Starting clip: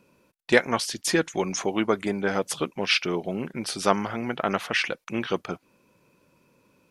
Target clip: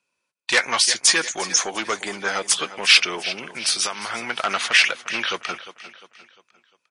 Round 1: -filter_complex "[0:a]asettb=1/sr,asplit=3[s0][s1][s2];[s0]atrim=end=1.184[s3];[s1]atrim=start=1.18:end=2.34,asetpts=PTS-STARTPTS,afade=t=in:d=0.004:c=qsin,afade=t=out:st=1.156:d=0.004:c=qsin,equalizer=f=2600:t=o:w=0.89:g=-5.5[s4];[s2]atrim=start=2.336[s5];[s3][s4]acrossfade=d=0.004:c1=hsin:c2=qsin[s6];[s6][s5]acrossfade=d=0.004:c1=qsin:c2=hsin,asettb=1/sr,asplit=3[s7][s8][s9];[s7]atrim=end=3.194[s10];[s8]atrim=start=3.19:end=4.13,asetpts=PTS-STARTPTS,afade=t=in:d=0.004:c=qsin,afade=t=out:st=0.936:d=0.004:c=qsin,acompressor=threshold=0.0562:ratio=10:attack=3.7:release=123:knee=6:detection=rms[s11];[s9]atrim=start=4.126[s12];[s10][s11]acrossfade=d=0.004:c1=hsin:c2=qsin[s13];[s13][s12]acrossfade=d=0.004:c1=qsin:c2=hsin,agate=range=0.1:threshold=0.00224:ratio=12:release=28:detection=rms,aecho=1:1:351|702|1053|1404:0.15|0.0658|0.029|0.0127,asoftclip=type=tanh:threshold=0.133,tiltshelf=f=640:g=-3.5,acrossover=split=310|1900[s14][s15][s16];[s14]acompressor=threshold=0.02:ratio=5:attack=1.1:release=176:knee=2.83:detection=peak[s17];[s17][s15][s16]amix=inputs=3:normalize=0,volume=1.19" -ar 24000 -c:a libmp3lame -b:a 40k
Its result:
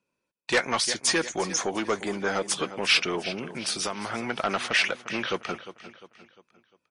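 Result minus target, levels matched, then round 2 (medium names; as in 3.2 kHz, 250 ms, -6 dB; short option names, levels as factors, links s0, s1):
500 Hz band +8.5 dB
-filter_complex "[0:a]asettb=1/sr,asplit=3[s0][s1][s2];[s0]atrim=end=1.184[s3];[s1]atrim=start=1.18:end=2.34,asetpts=PTS-STARTPTS,afade=t=in:d=0.004:c=qsin,afade=t=out:st=1.156:d=0.004:c=qsin,equalizer=f=2600:t=o:w=0.89:g=-5.5[s4];[s2]atrim=start=2.336[s5];[s3][s4]acrossfade=d=0.004:c1=hsin:c2=qsin[s6];[s6][s5]acrossfade=d=0.004:c1=qsin:c2=hsin,asettb=1/sr,asplit=3[s7][s8][s9];[s7]atrim=end=3.194[s10];[s8]atrim=start=3.19:end=4.13,asetpts=PTS-STARTPTS,afade=t=in:d=0.004:c=qsin,afade=t=out:st=0.936:d=0.004:c=qsin,acompressor=threshold=0.0562:ratio=10:attack=3.7:release=123:knee=6:detection=rms[s11];[s9]atrim=start=4.126[s12];[s10][s11]acrossfade=d=0.004:c1=hsin:c2=qsin[s13];[s13][s12]acrossfade=d=0.004:c1=qsin:c2=hsin,agate=range=0.1:threshold=0.00224:ratio=12:release=28:detection=rms,aecho=1:1:351|702|1053|1404:0.15|0.0658|0.029|0.0127,asoftclip=type=tanh:threshold=0.133,tiltshelf=f=640:g=-12.5,acrossover=split=310|1900[s14][s15][s16];[s14]acompressor=threshold=0.02:ratio=5:attack=1.1:release=176:knee=2.83:detection=peak[s17];[s17][s15][s16]amix=inputs=3:normalize=0,volume=1.19" -ar 24000 -c:a libmp3lame -b:a 40k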